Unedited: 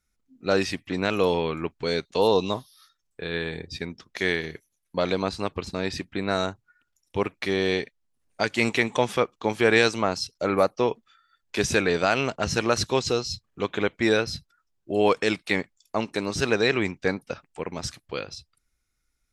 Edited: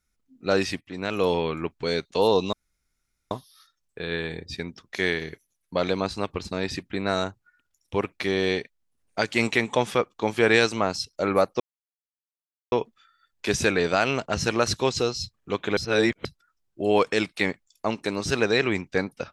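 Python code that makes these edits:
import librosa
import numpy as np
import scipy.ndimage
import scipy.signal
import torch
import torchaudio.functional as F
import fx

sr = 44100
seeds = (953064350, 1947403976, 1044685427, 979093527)

y = fx.edit(x, sr, fx.fade_in_from(start_s=0.81, length_s=0.5, floor_db=-13.0),
    fx.insert_room_tone(at_s=2.53, length_s=0.78),
    fx.insert_silence(at_s=10.82, length_s=1.12),
    fx.reverse_span(start_s=13.87, length_s=0.48), tone=tone)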